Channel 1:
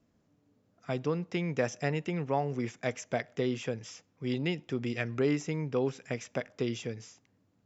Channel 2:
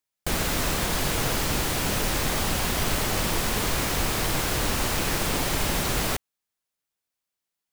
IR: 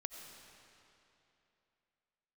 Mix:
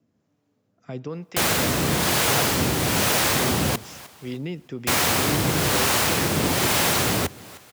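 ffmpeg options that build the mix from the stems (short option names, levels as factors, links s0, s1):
-filter_complex "[0:a]alimiter=limit=0.0708:level=0:latency=1,volume=1.33,asplit=2[s0][s1];[s1]volume=0.112[s2];[1:a]acontrast=52,adelay=1100,volume=1.19,asplit=3[s3][s4][s5];[s3]atrim=end=3.76,asetpts=PTS-STARTPTS,afade=t=out:st=3.756:d=0.004:c=hsin[s6];[s4]atrim=start=3.76:end=4.87,asetpts=PTS-STARTPTS,volume=0[s7];[s5]atrim=start=4.87,asetpts=PTS-STARTPTS,afade=t=in:d=0.004:c=hsin[s8];[s6][s7][s8]concat=n=3:v=0:a=1,asplit=2[s9][s10];[s10]volume=0.0891[s11];[2:a]atrim=start_sample=2205[s12];[s2][s12]afir=irnorm=-1:irlink=0[s13];[s11]aecho=0:1:307|614|921|1228|1535:1|0.39|0.152|0.0593|0.0231[s14];[s0][s9][s13][s14]amix=inputs=4:normalize=0,acrossover=split=500[s15][s16];[s15]aeval=exprs='val(0)*(1-0.5/2+0.5/2*cos(2*PI*1.1*n/s))':c=same[s17];[s16]aeval=exprs='val(0)*(1-0.5/2-0.5/2*cos(2*PI*1.1*n/s))':c=same[s18];[s17][s18]amix=inputs=2:normalize=0,highpass=f=81:w=0.5412,highpass=f=81:w=1.3066"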